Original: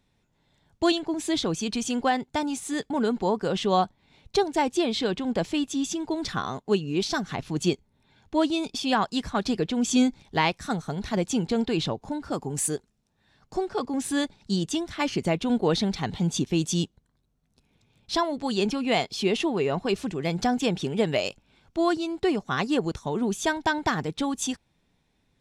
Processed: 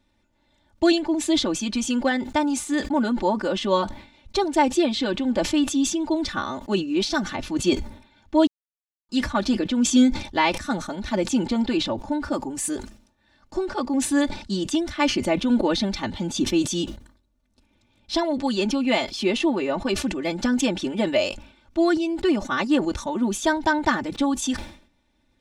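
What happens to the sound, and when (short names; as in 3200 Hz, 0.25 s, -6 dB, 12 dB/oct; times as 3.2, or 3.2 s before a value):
8.47–9.09 mute
whole clip: high shelf 7400 Hz -6.5 dB; comb 3.4 ms, depth 96%; sustainer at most 110 dB/s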